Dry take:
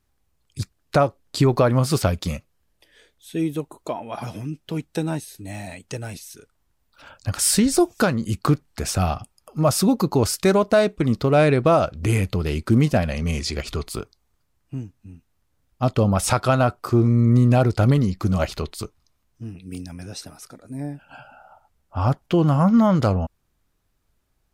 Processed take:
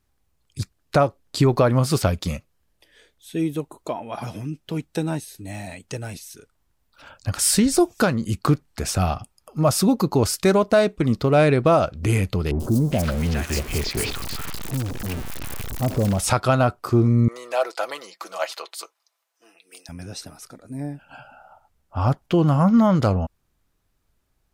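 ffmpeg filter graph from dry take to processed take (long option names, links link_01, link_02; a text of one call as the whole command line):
ffmpeg -i in.wav -filter_complex "[0:a]asettb=1/sr,asplit=3[link_01][link_02][link_03];[link_01]atrim=end=12.514[link_04];[link_02]atrim=start=12.51:end=16.19,asetpts=PTS-STARTPTS,afade=type=in:duration=0.004:curve=qsin,afade=type=out:start_time=3.676:duration=0.004:curve=qsin,aeval=exprs='val(0)+0.5*0.075*sgn(val(0))':channel_layout=same,acompressor=threshold=-22dB:ratio=1.5:attack=3.2:release=140:knee=1:detection=peak,acrossover=split=900|5300[link_05][link_06][link_07];[link_07]adelay=90[link_08];[link_06]adelay=410[link_09];[link_05][link_09][link_08]amix=inputs=3:normalize=0,atrim=end_sample=162288[link_10];[link_03]atrim=start=16.186[link_11];[link_04][link_10]acrossfade=duration=0.004:curve1=hsin:curve2=qsin[link_12];[link_12][link_11]acrossfade=duration=0.004:curve1=qsin:curve2=hsin,asettb=1/sr,asplit=3[link_13][link_14][link_15];[link_13]atrim=end=17.284[link_16];[link_14]atrim=start=17.28:end=19.89,asetpts=PTS-STARTPTS,afade=type=in:duration=0.004:curve=qsin,afade=type=out:start_time=2.606:duration=0.004:curve=qsin,highpass=frequency=570:width=0.5412,highpass=frequency=570:width=1.3066,aecho=1:1:6:0.46,atrim=end_sample=115101[link_17];[link_15]atrim=start=19.886[link_18];[link_16][link_17]acrossfade=duration=0.004:curve1=hsin:curve2=qsin[link_19];[link_19][link_18]acrossfade=duration=0.004:curve1=qsin:curve2=hsin" out.wav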